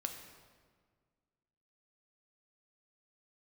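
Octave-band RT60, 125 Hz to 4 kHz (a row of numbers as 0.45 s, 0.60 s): 2.1 s, 2.1 s, 1.8 s, 1.6 s, 1.4 s, 1.2 s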